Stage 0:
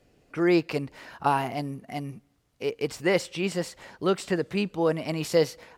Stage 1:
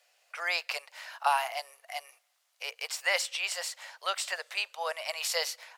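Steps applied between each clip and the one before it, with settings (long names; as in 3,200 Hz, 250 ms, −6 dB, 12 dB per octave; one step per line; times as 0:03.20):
Butterworth high-pass 580 Hz 48 dB per octave
tilt shelving filter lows −5.5 dB, about 1,400 Hz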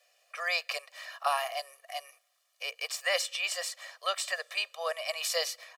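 comb filter 1.7 ms, depth 97%
level −3 dB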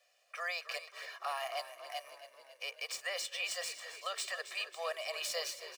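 running median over 3 samples
brickwall limiter −24.5 dBFS, peak gain reduction 10 dB
echo with shifted repeats 273 ms, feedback 61%, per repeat −34 Hz, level −12.5 dB
level −3.5 dB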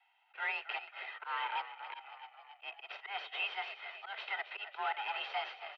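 harmonic generator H 8 −17 dB, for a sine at −26 dBFS
volume swells 100 ms
single-sideband voice off tune +210 Hz 210–3,000 Hz
level +2 dB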